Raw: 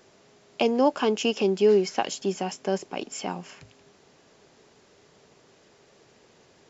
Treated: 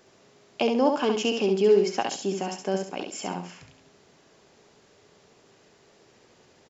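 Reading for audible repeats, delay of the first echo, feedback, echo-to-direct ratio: 3, 68 ms, 26%, −4.5 dB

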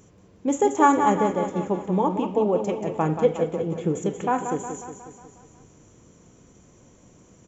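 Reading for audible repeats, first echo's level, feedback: 6, −8.0 dB, 56%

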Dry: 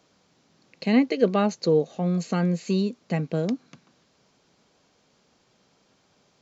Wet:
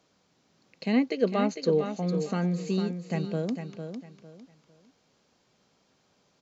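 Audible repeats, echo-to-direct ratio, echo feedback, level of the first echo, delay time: 3, −7.5 dB, 27%, −8.0 dB, 453 ms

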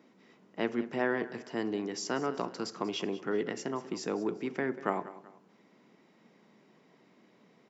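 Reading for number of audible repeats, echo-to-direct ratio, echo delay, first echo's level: 2, −16.0 dB, 190 ms, −16.5 dB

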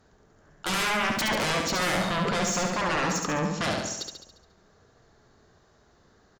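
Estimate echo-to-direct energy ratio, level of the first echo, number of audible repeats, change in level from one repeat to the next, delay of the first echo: −2.5 dB, −4.0 dB, 6, −5.0 dB, 70 ms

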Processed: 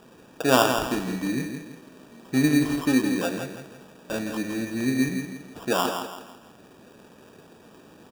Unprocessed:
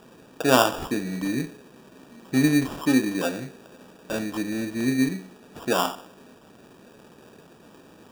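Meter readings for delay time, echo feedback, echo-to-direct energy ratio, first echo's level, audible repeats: 165 ms, 36%, −6.5 dB, −7.0 dB, 4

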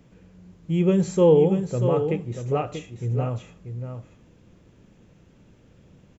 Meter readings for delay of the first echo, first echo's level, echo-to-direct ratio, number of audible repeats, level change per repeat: 636 ms, −8.0 dB, −8.0 dB, 1, repeats not evenly spaced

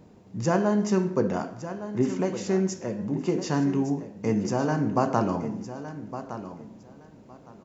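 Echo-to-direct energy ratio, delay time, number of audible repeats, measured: −12.0 dB, 1,162 ms, 2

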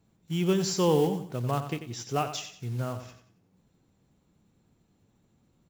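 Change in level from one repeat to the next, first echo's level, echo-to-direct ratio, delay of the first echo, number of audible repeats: −9.5 dB, −10.5 dB, −10.0 dB, 91 ms, 3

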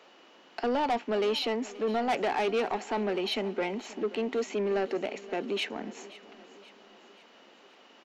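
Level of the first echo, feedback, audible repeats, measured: −18.5 dB, 53%, 3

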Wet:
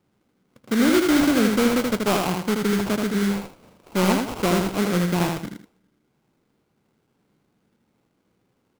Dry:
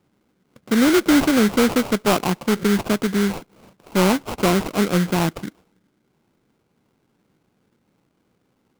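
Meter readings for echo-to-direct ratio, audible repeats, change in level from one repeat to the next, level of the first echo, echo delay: −3.0 dB, 2, −10.5 dB, −3.5 dB, 80 ms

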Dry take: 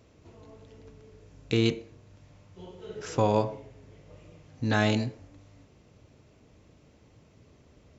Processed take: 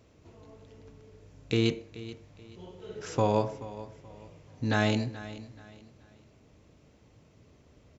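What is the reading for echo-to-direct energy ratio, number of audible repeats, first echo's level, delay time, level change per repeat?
−15.5 dB, 2, −16.0 dB, 430 ms, −10.0 dB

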